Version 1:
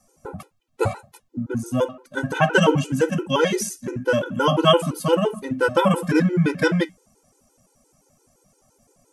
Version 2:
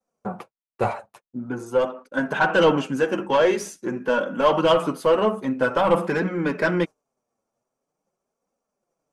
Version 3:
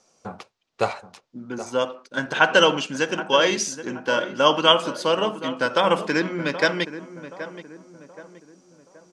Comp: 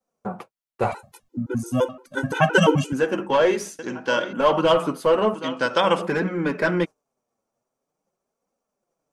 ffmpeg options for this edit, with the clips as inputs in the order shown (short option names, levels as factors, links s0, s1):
-filter_complex "[2:a]asplit=2[s0][s1];[1:a]asplit=4[s2][s3][s4][s5];[s2]atrim=end=0.922[s6];[0:a]atrim=start=0.918:end=2.932[s7];[s3]atrim=start=2.928:end=3.792[s8];[s0]atrim=start=3.788:end=4.332[s9];[s4]atrim=start=4.328:end=5.342[s10];[s1]atrim=start=5.338:end=6.022[s11];[s5]atrim=start=6.018[s12];[s6][s7]acrossfade=d=0.004:c1=hsin:c2=hsin[s13];[s13][s8]acrossfade=d=0.004:c1=hsin:c2=hsin[s14];[s14][s9]acrossfade=d=0.004:c1=hsin:c2=hsin[s15];[s15][s10]acrossfade=d=0.004:c1=hsin:c2=hsin[s16];[s16][s11]acrossfade=d=0.004:c1=hsin:c2=hsin[s17];[s17][s12]acrossfade=d=0.004:c1=hsin:c2=hsin"